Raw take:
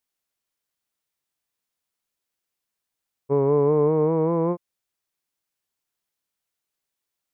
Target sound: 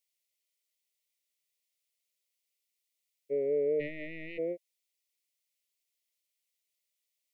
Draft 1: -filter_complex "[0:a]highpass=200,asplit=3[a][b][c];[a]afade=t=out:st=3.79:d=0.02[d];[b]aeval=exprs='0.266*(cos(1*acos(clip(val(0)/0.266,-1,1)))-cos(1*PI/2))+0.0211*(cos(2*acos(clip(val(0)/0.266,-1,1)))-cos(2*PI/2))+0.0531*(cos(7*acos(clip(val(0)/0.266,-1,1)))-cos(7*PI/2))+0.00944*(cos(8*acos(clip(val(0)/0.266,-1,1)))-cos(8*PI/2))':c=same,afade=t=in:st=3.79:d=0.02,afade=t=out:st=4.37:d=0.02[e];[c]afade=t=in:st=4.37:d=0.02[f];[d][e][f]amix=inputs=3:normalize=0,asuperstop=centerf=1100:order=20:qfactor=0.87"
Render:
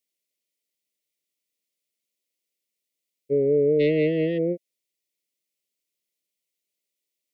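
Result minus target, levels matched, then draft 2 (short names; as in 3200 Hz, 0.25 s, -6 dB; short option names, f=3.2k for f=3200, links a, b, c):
250 Hz band +5.5 dB
-filter_complex "[0:a]highpass=710,asplit=3[a][b][c];[a]afade=t=out:st=3.79:d=0.02[d];[b]aeval=exprs='0.266*(cos(1*acos(clip(val(0)/0.266,-1,1)))-cos(1*PI/2))+0.0211*(cos(2*acos(clip(val(0)/0.266,-1,1)))-cos(2*PI/2))+0.0531*(cos(7*acos(clip(val(0)/0.266,-1,1)))-cos(7*PI/2))+0.00944*(cos(8*acos(clip(val(0)/0.266,-1,1)))-cos(8*PI/2))':c=same,afade=t=in:st=3.79:d=0.02,afade=t=out:st=4.37:d=0.02[e];[c]afade=t=in:st=4.37:d=0.02[f];[d][e][f]amix=inputs=3:normalize=0,asuperstop=centerf=1100:order=20:qfactor=0.87"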